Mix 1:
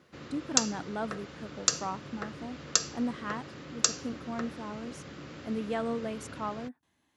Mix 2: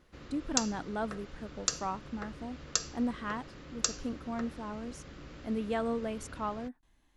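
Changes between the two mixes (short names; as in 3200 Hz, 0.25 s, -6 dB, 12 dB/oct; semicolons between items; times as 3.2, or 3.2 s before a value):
background -5.0 dB; master: remove HPF 93 Hz 24 dB/oct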